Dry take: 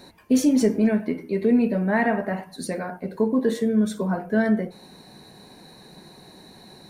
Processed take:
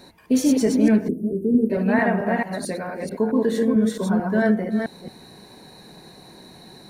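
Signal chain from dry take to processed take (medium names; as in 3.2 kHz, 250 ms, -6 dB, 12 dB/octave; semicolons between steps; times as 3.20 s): chunks repeated in reverse 221 ms, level -2 dB; 1.08–1.70 s: inverse Chebyshev band-stop 1.3–3.4 kHz, stop band 70 dB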